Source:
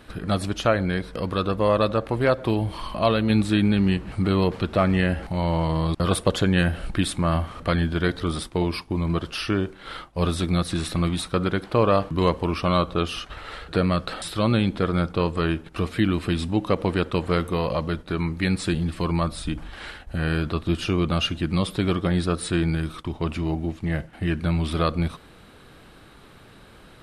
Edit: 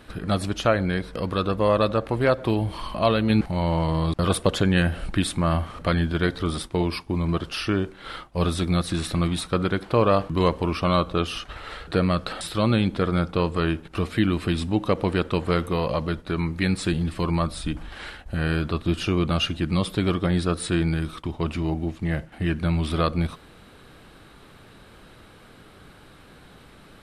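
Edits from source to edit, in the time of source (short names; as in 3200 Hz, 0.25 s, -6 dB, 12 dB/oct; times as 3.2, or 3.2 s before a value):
3.41–5.22 cut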